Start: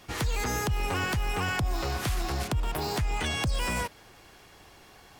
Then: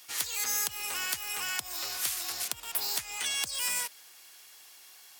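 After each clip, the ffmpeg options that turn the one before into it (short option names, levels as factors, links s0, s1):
-af "aderivative,volume=2.37"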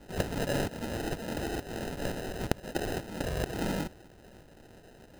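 -af "acrusher=samples=39:mix=1:aa=0.000001"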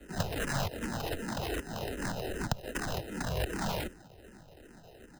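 -filter_complex "[0:a]acrossover=split=200|540|3200[s0][s1][s2][s3];[s1]aeval=exprs='(mod(50.1*val(0)+1,2)-1)/50.1':c=same[s4];[s3]aecho=1:1:97:0.0794[s5];[s0][s4][s2][s5]amix=inputs=4:normalize=0,asplit=2[s6][s7];[s7]afreqshift=-2.6[s8];[s6][s8]amix=inputs=2:normalize=1,volume=1.41"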